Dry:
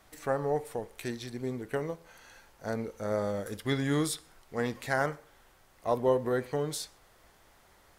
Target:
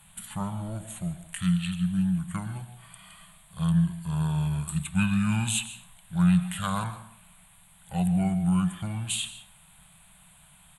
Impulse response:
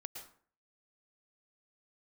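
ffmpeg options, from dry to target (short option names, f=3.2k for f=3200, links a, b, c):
-filter_complex "[0:a]firequalizer=gain_entry='entry(140,0);entry(240,14);entry(340,-18);entry(570,-27);entry(900,-6);entry(1300,-1);entry(3100,3);entry(4800,6);entry(7200,-19);entry(11000,12)':delay=0.05:min_phase=1,asetrate=32634,aresample=44100,equalizer=f=1.3k:t=o:w=0.66:g=-4.5,asplit=2[a][b];[1:a]atrim=start_sample=2205,asetrate=39249,aresample=44100[c];[b][c]afir=irnorm=-1:irlink=0,volume=-1dB[d];[a][d]amix=inputs=2:normalize=0"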